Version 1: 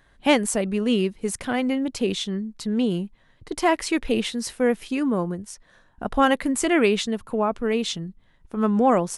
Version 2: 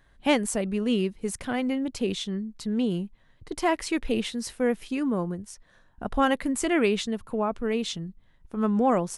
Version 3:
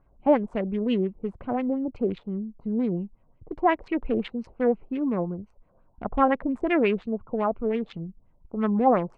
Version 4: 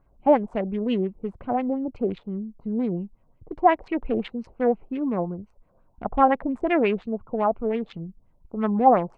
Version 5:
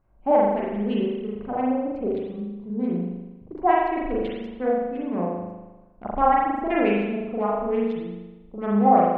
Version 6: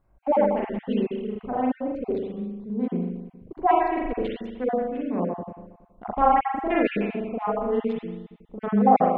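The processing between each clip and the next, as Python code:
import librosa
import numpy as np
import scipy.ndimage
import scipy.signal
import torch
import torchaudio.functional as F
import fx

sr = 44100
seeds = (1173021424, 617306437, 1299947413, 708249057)

y1 = fx.low_shelf(x, sr, hz=140.0, db=5.0)
y1 = y1 * 10.0 ** (-4.5 / 20.0)
y2 = fx.wiener(y1, sr, points=25)
y2 = fx.filter_lfo_lowpass(y2, sr, shape='sine', hz=5.7, low_hz=610.0, high_hz=2600.0, q=2.1)
y3 = fx.dynamic_eq(y2, sr, hz=760.0, q=2.4, threshold_db=-39.0, ratio=4.0, max_db=6)
y4 = fx.rev_spring(y3, sr, rt60_s=1.1, pass_ms=(39,), chirp_ms=75, drr_db=-5.0)
y4 = y4 * 10.0 ** (-5.5 / 20.0)
y5 = fx.spec_dropout(y4, sr, seeds[0], share_pct=22)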